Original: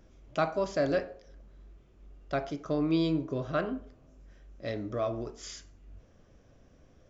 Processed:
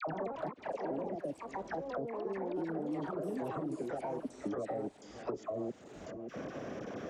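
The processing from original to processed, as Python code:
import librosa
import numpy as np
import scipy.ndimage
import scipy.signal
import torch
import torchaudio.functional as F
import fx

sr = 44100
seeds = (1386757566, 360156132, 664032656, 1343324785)

p1 = fx.block_reorder(x, sr, ms=209.0, group=3)
p2 = scipy.signal.sosfilt(scipy.signal.butter(2, 210.0, 'highpass', fs=sr, output='sos'), p1)
p3 = fx.env_lowpass_down(p2, sr, base_hz=360.0, full_db=-27.5)
p4 = fx.level_steps(p3, sr, step_db=22)
p5 = fx.dispersion(p4, sr, late='lows', ms=72.0, hz=970.0)
p6 = p5 + fx.echo_single(p5, sr, ms=577, db=-22.5, dry=0)
p7 = fx.echo_pitch(p6, sr, ms=83, semitones=3, count=3, db_per_echo=-3.0)
p8 = fx.band_squash(p7, sr, depth_pct=100)
y = p8 * 10.0 ** (6.5 / 20.0)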